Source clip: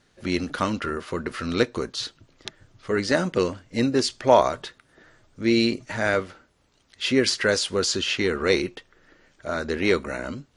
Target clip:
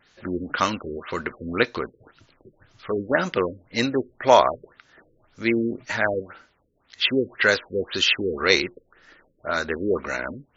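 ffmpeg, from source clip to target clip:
ffmpeg -i in.wav -af "tiltshelf=frequency=740:gain=-6,afftfilt=real='re*lt(b*sr/1024,530*pow(7600/530,0.5+0.5*sin(2*PI*1.9*pts/sr)))':imag='im*lt(b*sr/1024,530*pow(7600/530,0.5+0.5*sin(2*PI*1.9*pts/sr)))':win_size=1024:overlap=0.75,volume=2dB" out.wav

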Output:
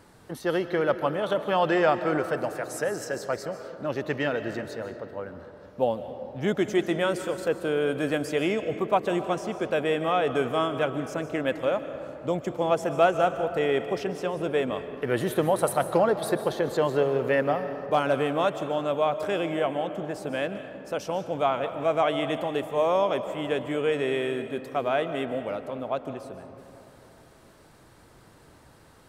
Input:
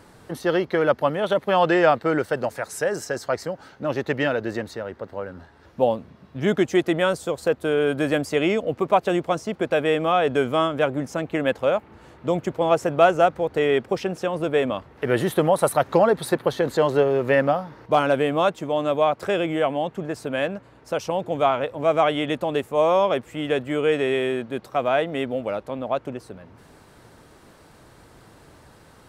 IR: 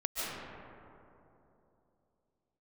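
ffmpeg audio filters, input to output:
-filter_complex "[0:a]asplit=2[link_01][link_02];[1:a]atrim=start_sample=2205,highshelf=frequency=5000:gain=10.5[link_03];[link_02][link_03]afir=irnorm=-1:irlink=0,volume=-15dB[link_04];[link_01][link_04]amix=inputs=2:normalize=0,volume=-6dB"

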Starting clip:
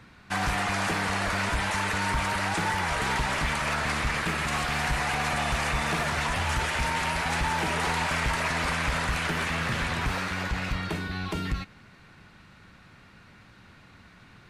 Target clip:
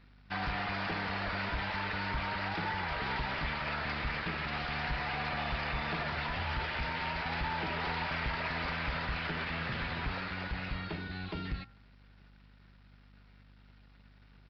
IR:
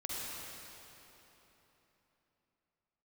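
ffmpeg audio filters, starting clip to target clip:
-af "aresample=11025,aeval=exprs='sgn(val(0))*max(abs(val(0))-0.00178,0)':channel_layout=same,aresample=44100,bandreject=frequency=1100:width=22,aeval=exprs='val(0)+0.00282*(sin(2*PI*50*n/s)+sin(2*PI*2*50*n/s)/2+sin(2*PI*3*50*n/s)/3+sin(2*PI*4*50*n/s)/4+sin(2*PI*5*50*n/s)/5)':channel_layout=same,bandreject=frequency=114.6:width_type=h:width=4,bandreject=frequency=229.2:width_type=h:width=4,bandreject=frequency=343.8:width_type=h:width=4,bandreject=frequency=458.4:width_type=h:width=4,bandreject=frequency=573:width_type=h:width=4,bandreject=frequency=687.6:width_type=h:width=4,bandreject=frequency=802.2:width_type=h:width=4,bandreject=frequency=916.8:width_type=h:width=4,bandreject=frequency=1031.4:width_type=h:width=4,bandreject=frequency=1146:width_type=h:width=4,bandreject=frequency=1260.6:width_type=h:width=4,bandreject=frequency=1375.2:width_type=h:width=4,bandreject=frequency=1489.8:width_type=h:width=4,bandreject=frequency=1604.4:width_type=h:width=4,bandreject=frequency=1719:width_type=h:width=4,bandreject=frequency=1833.6:width_type=h:width=4,volume=-7dB"

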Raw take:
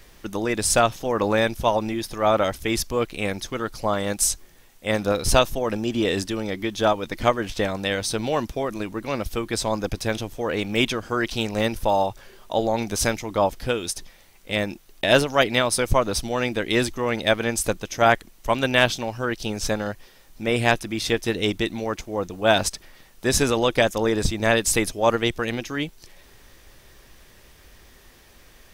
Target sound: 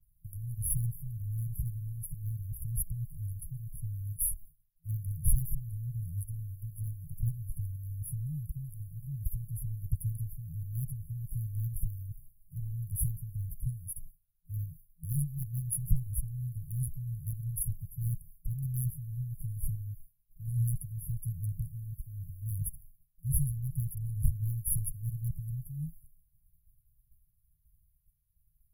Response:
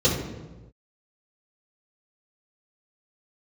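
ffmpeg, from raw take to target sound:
-af "agate=range=-33dB:threshold=-38dB:ratio=3:detection=peak,aeval=exprs='0.282*(abs(mod(val(0)/0.282+3,4)-2)-1)':channel_layout=same,afftfilt=real='re*(1-between(b*sr/4096,170,10000))':imag='im*(1-between(b*sr/4096,170,10000))':win_size=4096:overlap=0.75"

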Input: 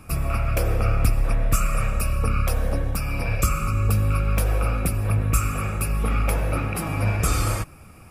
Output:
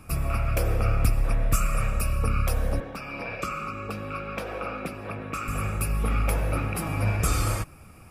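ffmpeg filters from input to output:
ffmpeg -i in.wav -filter_complex "[0:a]asettb=1/sr,asplit=3[link_01][link_02][link_03];[link_01]atrim=end=2.804[link_04];[link_02]atrim=start=2.8:end=5.48,asetpts=PTS-STARTPTS,afade=type=in:duration=0.004:curve=qsin,afade=type=out:start_time=2.676:duration=0.004:curve=qsin,acrossover=split=190 4800:gain=0.0794 1 0.126[link_05][link_06][link_07];[link_05][link_06][link_07]amix=inputs=3:normalize=0[link_08];[link_03]atrim=start=5.476[link_09];[link_04][link_08]acrossfade=duration=0.004:curve1=hsin:curve2=qsin[link_10];[link_10][link_09]acrossfade=duration=0.004:curve1=qsin:curve2=hsin,volume=-2.5dB" out.wav

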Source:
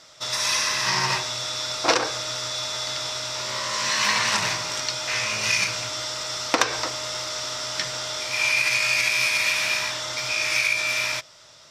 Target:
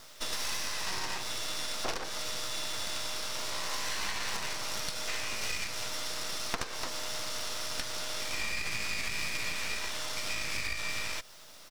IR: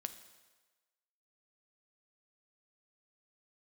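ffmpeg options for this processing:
-filter_complex "[0:a]highpass=150,acrusher=bits=6:dc=4:mix=0:aa=0.000001,acompressor=threshold=-29dB:ratio=6,aeval=exprs='max(val(0),0)':channel_layout=same,asplit=3[link_01][link_02][link_03];[link_02]asetrate=22050,aresample=44100,atempo=2,volume=-16dB[link_04];[link_03]asetrate=35002,aresample=44100,atempo=1.25992,volume=-8dB[link_05];[link_01][link_04][link_05]amix=inputs=3:normalize=0"

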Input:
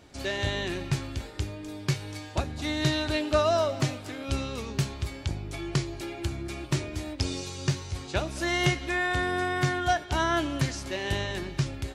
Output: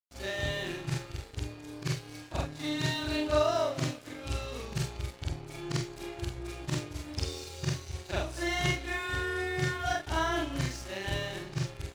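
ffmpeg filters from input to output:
ffmpeg -i in.wav -af "afftfilt=real='re':imag='-im':win_size=4096:overlap=0.75,aeval=exprs='sgn(val(0))*max(abs(val(0))-0.00355,0)':channel_layout=same,volume=1.5dB" out.wav

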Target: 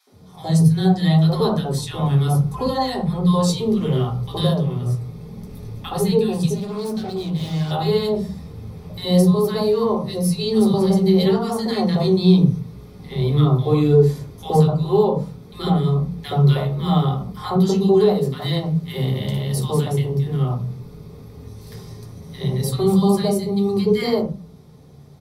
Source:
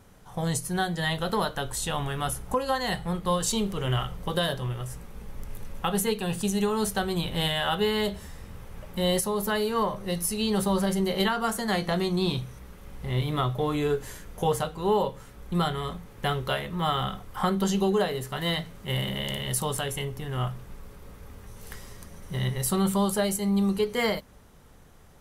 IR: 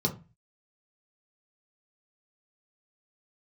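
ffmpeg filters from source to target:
-filter_complex "[0:a]acrossover=split=290|1200[link_01][link_02][link_03];[link_02]adelay=70[link_04];[link_01]adelay=120[link_05];[link_05][link_04][link_03]amix=inputs=3:normalize=0,asettb=1/sr,asplit=3[link_06][link_07][link_08];[link_06]atrim=end=6.544[link_09];[link_07]atrim=start=6.54:end=7.71,asetpts=PTS-STARTPTS,afade=type=in:duration=0.004:curve=qsin,afade=type=out:start_time=1.166:duration=0.004:curve=qsin,aeval=exprs='(tanh(44.7*val(0)+0.55)-tanh(0.55))/44.7':channel_layout=same[link_10];[link_08]atrim=start=7.706[link_11];[link_09][link_10]acrossfade=duration=0.004:curve1=hsin:curve2=qsin[link_12];[link_12][link_11]acrossfade=duration=0.004:curve1=qsin:curve2=hsin[link_13];[1:a]atrim=start_sample=2205[link_14];[link_13][link_14]afir=irnorm=-1:irlink=0,flanger=delay=2.3:depth=6.5:regen=-72:speed=0.7:shape=triangular"

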